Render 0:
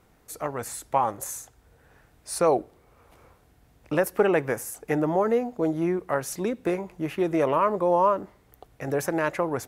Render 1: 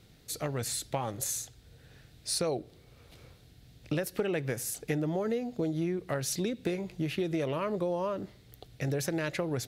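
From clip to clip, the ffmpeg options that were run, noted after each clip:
ffmpeg -i in.wav -af "equalizer=frequency=125:width_type=o:width=1:gain=8,equalizer=frequency=1000:width_type=o:width=1:gain=-11,equalizer=frequency=4000:width_type=o:width=1:gain=12,acompressor=threshold=-28dB:ratio=6" out.wav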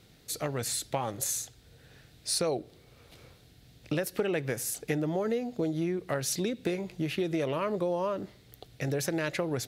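ffmpeg -i in.wav -af "lowshelf=frequency=140:gain=-5.5,volume=2dB" out.wav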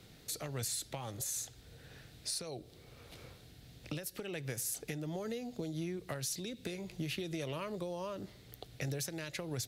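ffmpeg -i in.wav -filter_complex "[0:a]acrossover=split=120|3000[link_01][link_02][link_03];[link_02]acompressor=threshold=-43dB:ratio=3[link_04];[link_01][link_04][link_03]amix=inputs=3:normalize=0,alimiter=level_in=4.5dB:limit=-24dB:level=0:latency=1:release=275,volume=-4.5dB,volume=1dB" out.wav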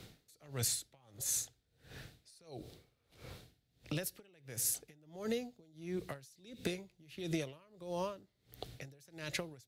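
ffmpeg -i in.wav -af "aeval=exprs='val(0)*pow(10,-29*(0.5-0.5*cos(2*PI*1.5*n/s))/20)':channel_layout=same,volume=4.5dB" out.wav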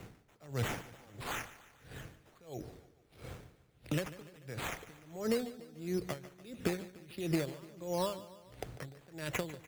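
ffmpeg -i in.wav -af "aemphasis=mode=reproduction:type=50kf,acrusher=samples=9:mix=1:aa=0.000001:lfo=1:lforange=5.4:lforate=1.5,aecho=1:1:147|294|441|588|735:0.158|0.0824|0.0429|0.0223|0.0116,volume=4.5dB" out.wav

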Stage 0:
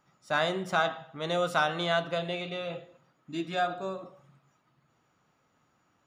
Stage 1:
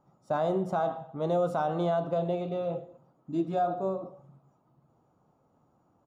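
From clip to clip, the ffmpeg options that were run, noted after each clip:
ffmpeg -i in.wav -af "firequalizer=gain_entry='entry(810,0);entry(1800,-21);entry(7200,-15)':delay=0.05:min_phase=1,alimiter=level_in=0.5dB:limit=-24dB:level=0:latency=1:release=52,volume=-0.5dB,volume=5dB" out.wav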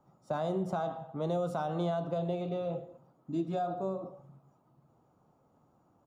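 ffmpeg -i in.wav -filter_complex "[0:a]acrossover=split=200|3000[link_01][link_02][link_03];[link_02]acompressor=threshold=-35dB:ratio=2[link_04];[link_01][link_04][link_03]amix=inputs=3:normalize=0" out.wav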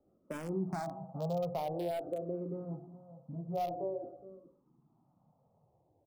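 ffmpeg -i in.wav -filter_complex "[0:a]acrossover=split=990[link_01][link_02];[link_01]aecho=1:1:418:0.188[link_03];[link_02]acrusher=bits=4:dc=4:mix=0:aa=0.000001[link_04];[link_03][link_04]amix=inputs=2:normalize=0,asplit=2[link_05][link_06];[link_06]afreqshift=-0.48[link_07];[link_05][link_07]amix=inputs=2:normalize=1" out.wav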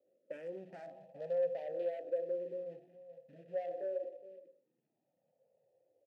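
ffmpeg -i in.wav -filter_complex "[0:a]asplit=2[link_01][link_02];[link_02]acrusher=bits=3:mode=log:mix=0:aa=0.000001,volume=-4dB[link_03];[link_01][link_03]amix=inputs=2:normalize=0,asoftclip=type=tanh:threshold=-26.5dB,asplit=3[link_04][link_05][link_06];[link_04]bandpass=frequency=530:width_type=q:width=8,volume=0dB[link_07];[link_05]bandpass=frequency=1840:width_type=q:width=8,volume=-6dB[link_08];[link_06]bandpass=frequency=2480:width_type=q:width=8,volume=-9dB[link_09];[link_07][link_08][link_09]amix=inputs=3:normalize=0,volume=2dB" out.wav

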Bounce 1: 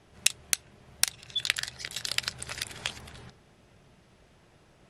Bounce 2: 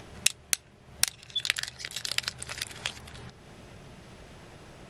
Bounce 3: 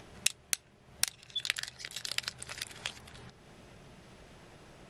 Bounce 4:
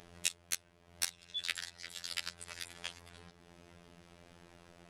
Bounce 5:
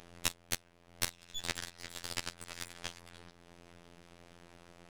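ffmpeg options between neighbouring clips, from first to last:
ffmpeg -i in.wav -af "acompressor=mode=upward:threshold=-37dB:ratio=2.5" out.wav
ffmpeg -i in.wav -af "equalizer=frequency=85:width=1.5:gain=-3.5,volume=-5dB" out.wav
ffmpeg -i in.wav -af "afftfilt=real='hypot(re,im)*cos(PI*b)':imag='0':win_size=2048:overlap=0.75,volume=-1dB" out.wav
ffmpeg -i in.wav -af "aeval=exprs='max(val(0),0)':channel_layout=same,volume=2dB" out.wav

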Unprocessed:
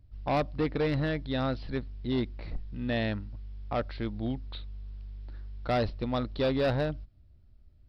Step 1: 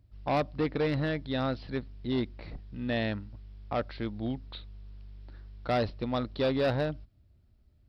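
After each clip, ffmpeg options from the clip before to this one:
ffmpeg -i in.wav -af "highpass=frequency=81:poles=1" out.wav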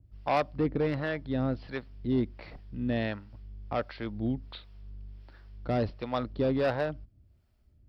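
ffmpeg -i in.wav -filter_complex "[0:a]equalizer=frequency=3900:width=7.5:gain=-6,acrossover=split=490[link_01][link_02];[link_01]aeval=exprs='val(0)*(1-0.7/2+0.7/2*cos(2*PI*1.4*n/s))':channel_layout=same[link_03];[link_02]aeval=exprs='val(0)*(1-0.7/2-0.7/2*cos(2*PI*1.4*n/s))':channel_layout=same[link_04];[link_03][link_04]amix=inputs=2:normalize=0,adynamicequalizer=threshold=0.00282:dfrequency=2200:dqfactor=0.7:tfrequency=2200:tqfactor=0.7:attack=5:release=100:ratio=0.375:range=3:mode=cutabove:tftype=highshelf,volume=3.5dB" out.wav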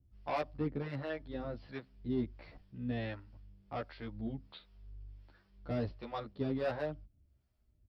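ffmpeg -i in.wav -filter_complex "[0:a]asplit=2[link_01][link_02];[link_02]adelay=11.9,afreqshift=-1.1[link_03];[link_01][link_03]amix=inputs=2:normalize=1,volume=-5dB" out.wav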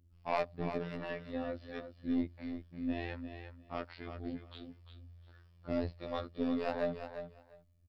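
ffmpeg -i in.wav -af "aeval=exprs='0.0708*(cos(1*acos(clip(val(0)/0.0708,-1,1)))-cos(1*PI/2))+0.0112*(cos(2*acos(clip(val(0)/0.0708,-1,1)))-cos(2*PI/2))':channel_layout=same,afftfilt=real='hypot(re,im)*cos(PI*b)':imag='0':win_size=2048:overlap=0.75,aecho=1:1:350|700:0.355|0.0568,volume=4.5dB" out.wav

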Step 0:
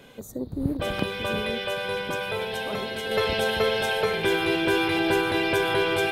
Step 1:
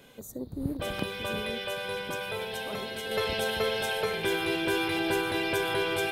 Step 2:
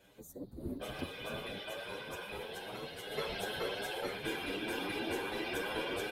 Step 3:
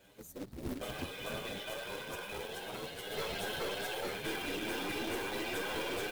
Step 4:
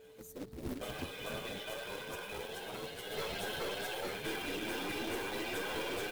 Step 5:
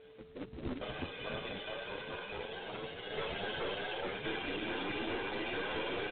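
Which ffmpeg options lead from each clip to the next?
ffmpeg -i in.wav -af "highshelf=frequency=5800:gain=7,volume=-5.5dB" out.wav
ffmpeg -i in.wav -filter_complex "[0:a]afftfilt=real='hypot(re,im)*cos(2*PI*random(0))':imag='hypot(re,im)*sin(2*PI*random(1))':win_size=512:overlap=0.75,asplit=2[link_01][link_02];[link_02]adelay=8.4,afreqshift=2.7[link_03];[link_01][link_03]amix=inputs=2:normalize=1" out.wav
ffmpeg -i in.wav -af "aeval=exprs='0.075*(cos(1*acos(clip(val(0)/0.075,-1,1)))-cos(1*PI/2))+0.0168*(cos(5*acos(clip(val(0)/0.075,-1,1)))-cos(5*PI/2))+0.0106*(cos(6*acos(clip(val(0)/0.075,-1,1)))-cos(6*PI/2))':channel_layout=same,acrusher=bits=2:mode=log:mix=0:aa=0.000001,volume=-5.5dB" out.wav
ffmpeg -i in.wav -af "aeval=exprs='val(0)+0.002*sin(2*PI*440*n/s)':channel_layout=same,volume=-1dB" out.wav
ffmpeg -i in.wav -af "aresample=8000,acrusher=bits=3:mode=log:mix=0:aa=0.000001,aresample=44100,volume=1dB" -ar 22050 -c:a libmp3lame -b:a 32k out.mp3

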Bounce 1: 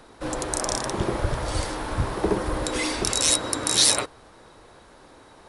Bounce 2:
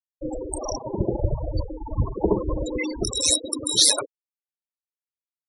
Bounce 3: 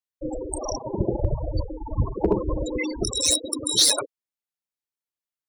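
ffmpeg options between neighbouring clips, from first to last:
ffmpeg -i in.wav -af "afftfilt=real='re*gte(hypot(re,im),0.126)':imag='im*gte(hypot(re,im),0.126)':win_size=1024:overlap=0.75,volume=2.5dB" out.wav
ffmpeg -i in.wav -af "volume=10.5dB,asoftclip=hard,volume=-10.5dB" out.wav

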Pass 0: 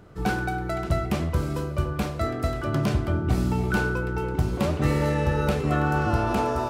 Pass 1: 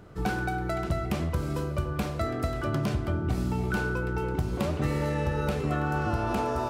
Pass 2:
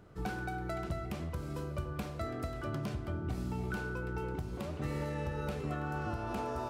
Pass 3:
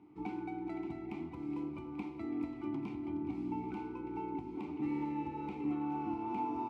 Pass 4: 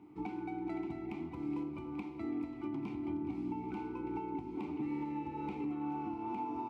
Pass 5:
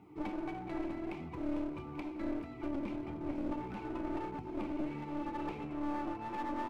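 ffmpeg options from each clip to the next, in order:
ffmpeg -i in.wav -af "acompressor=threshold=-26dB:ratio=2.5" out.wav
ffmpeg -i in.wav -af "alimiter=limit=-18.5dB:level=0:latency=1:release=424,volume=-7.5dB" out.wav
ffmpeg -i in.wav -filter_complex "[0:a]asplit=3[link_01][link_02][link_03];[link_01]bandpass=frequency=300:width_type=q:width=8,volume=0dB[link_04];[link_02]bandpass=frequency=870:width_type=q:width=8,volume=-6dB[link_05];[link_03]bandpass=frequency=2240:width_type=q:width=8,volume=-9dB[link_06];[link_04][link_05][link_06]amix=inputs=3:normalize=0,aecho=1:1:419|838|1257|1676|2095|2514:0.251|0.146|0.0845|0.049|0.0284|0.0165,volume=10dB" out.wav
ffmpeg -i in.wav -af "alimiter=level_in=9dB:limit=-24dB:level=0:latency=1:release=402,volume=-9dB,volume=3dB" out.wav
ffmpeg -i in.wav -af "flanger=delay=1.5:depth=2.1:regen=-27:speed=1.6:shape=sinusoidal,aeval=exprs='clip(val(0),-1,0.00398)':channel_layout=same,volume=6.5dB" out.wav

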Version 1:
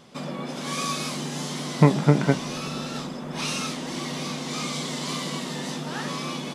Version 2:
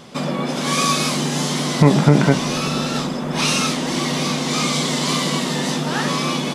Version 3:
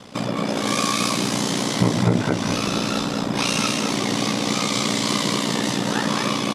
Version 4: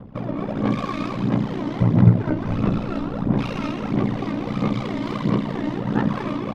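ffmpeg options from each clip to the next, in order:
ffmpeg -i in.wav -af "alimiter=level_in=11dB:limit=-1dB:release=50:level=0:latency=1,volume=-1dB" out.wav
ffmpeg -i in.wav -filter_complex "[0:a]acompressor=threshold=-20dB:ratio=2,aeval=exprs='val(0)*sin(2*PI*30*n/s)':channel_layout=same,asplit=2[link_01][link_02];[link_02]aecho=0:1:214:0.631[link_03];[link_01][link_03]amix=inputs=2:normalize=0,volume=2dB" out.wav
ffmpeg -i in.wav -af "adynamicsmooth=sensitivity=1:basefreq=1300,aemphasis=mode=reproduction:type=bsi,aphaser=in_gain=1:out_gain=1:delay=3.3:decay=0.52:speed=1.5:type=sinusoidal,volume=-6dB" out.wav

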